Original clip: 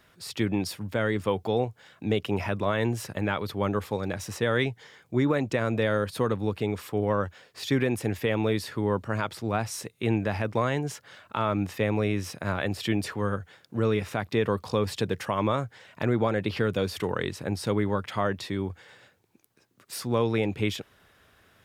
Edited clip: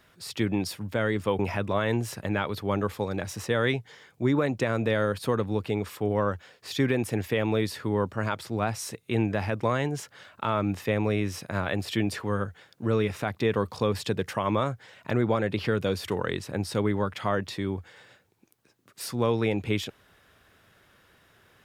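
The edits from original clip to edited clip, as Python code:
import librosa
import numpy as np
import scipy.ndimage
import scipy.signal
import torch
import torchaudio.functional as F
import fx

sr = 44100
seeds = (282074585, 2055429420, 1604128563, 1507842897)

y = fx.edit(x, sr, fx.cut(start_s=1.39, length_s=0.92), tone=tone)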